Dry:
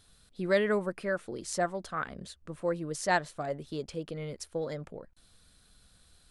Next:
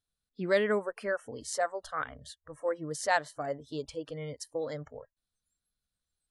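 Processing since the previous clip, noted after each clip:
noise reduction from a noise print of the clip's start 27 dB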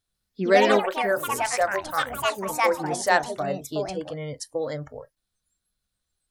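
delay with pitch and tempo change per echo 146 ms, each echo +4 semitones, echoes 3
convolution reverb, pre-delay 3 ms, DRR 13.5 dB
level +6.5 dB

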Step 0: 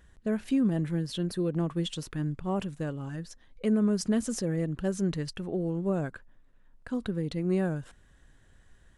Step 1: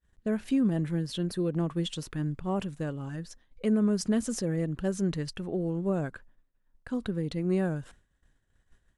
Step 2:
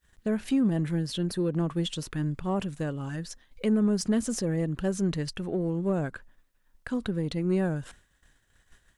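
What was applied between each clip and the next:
downward expander −48 dBFS
in parallel at −9 dB: soft clipping −30.5 dBFS, distortion −8 dB; on the sum: one half of a high-frequency compander encoder only

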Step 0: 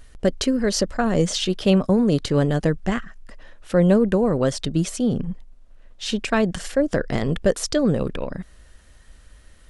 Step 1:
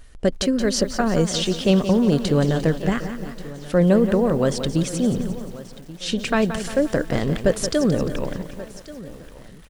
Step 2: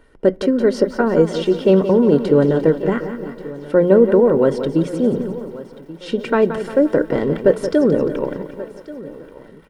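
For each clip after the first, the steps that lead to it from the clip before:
repeating echo 1,134 ms, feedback 42%, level −18 dB; feedback echo at a low word length 175 ms, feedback 55%, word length 7 bits, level −10 dB
convolution reverb RT60 0.35 s, pre-delay 3 ms, DRR 13.5 dB; level −10 dB

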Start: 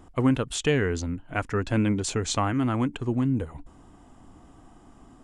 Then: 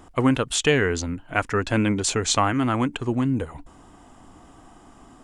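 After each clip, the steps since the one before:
low-shelf EQ 400 Hz −7 dB
level +7 dB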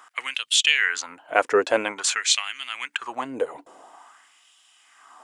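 auto-filter high-pass sine 0.49 Hz 450–3,100 Hz
level +1 dB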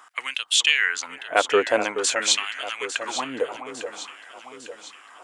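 delay that swaps between a low-pass and a high-pass 426 ms, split 1,300 Hz, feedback 71%, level −8.5 dB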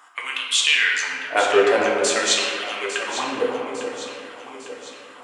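convolution reverb RT60 2.0 s, pre-delay 7 ms, DRR −3 dB
level −1.5 dB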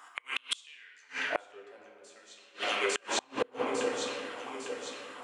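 gate with flip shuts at −14 dBFS, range −32 dB
level −2.5 dB

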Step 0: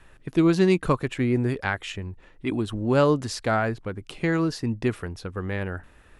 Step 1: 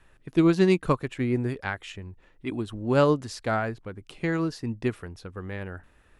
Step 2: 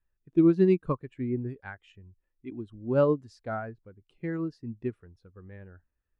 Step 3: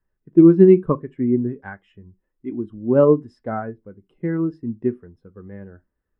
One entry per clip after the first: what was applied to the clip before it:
expander for the loud parts 1.5 to 1, over −28 dBFS
every bin expanded away from the loudest bin 1.5 to 1; level −3 dB
convolution reverb RT60 0.15 s, pre-delay 3 ms, DRR 9 dB; level −3 dB

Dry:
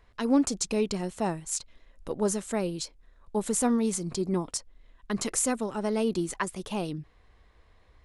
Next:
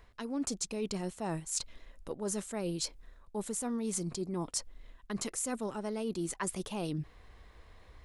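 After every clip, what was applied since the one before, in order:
high-shelf EQ 8,500 Hz +4.5 dB
reversed playback
downward compressor 12 to 1, threshold −36 dBFS, peak gain reduction 19 dB
reversed playback
level +4 dB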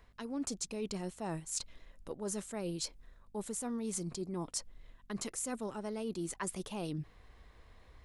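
mains hum 50 Hz, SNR 29 dB
level −3 dB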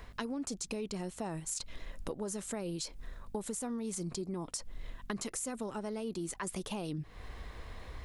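brickwall limiter −30.5 dBFS, peak gain reduction 10.5 dB
downward compressor 12 to 1, threshold −47 dBFS, peak gain reduction 13.5 dB
level +12.5 dB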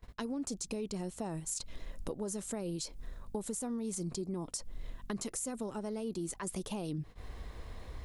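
noise gate −48 dBFS, range −23 dB
parametric band 1,900 Hz −5.5 dB 2.4 octaves
level +1 dB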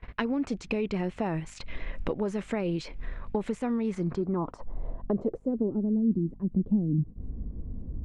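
low-pass filter sweep 2,300 Hz → 230 Hz, 0:03.80–0:06.03
level +8.5 dB

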